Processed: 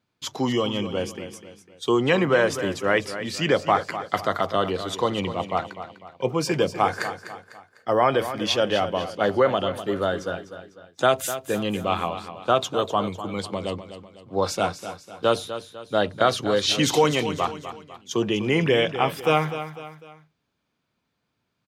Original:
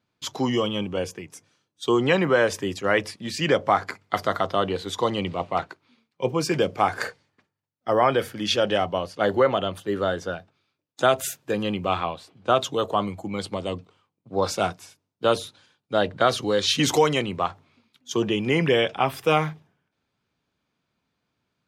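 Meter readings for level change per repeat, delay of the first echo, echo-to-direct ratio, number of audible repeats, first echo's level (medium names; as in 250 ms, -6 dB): -7.5 dB, 250 ms, -10.5 dB, 3, -11.5 dB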